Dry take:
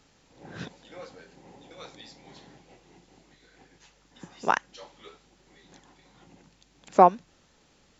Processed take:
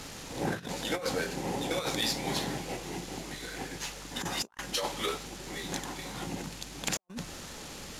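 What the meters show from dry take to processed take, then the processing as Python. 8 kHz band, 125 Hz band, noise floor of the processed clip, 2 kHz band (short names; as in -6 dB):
n/a, +4.5 dB, -45 dBFS, +2.0 dB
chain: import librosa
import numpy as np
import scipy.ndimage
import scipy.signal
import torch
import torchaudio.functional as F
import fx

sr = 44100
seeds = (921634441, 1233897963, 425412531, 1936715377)

y = fx.cvsd(x, sr, bps=64000)
y = fx.high_shelf(y, sr, hz=5700.0, db=3.5)
y = fx.over_compress(y, sr, threshold_db=-46.0, ratio=-0.5)
y = y * 10.0 ** (7.5 / 20.0)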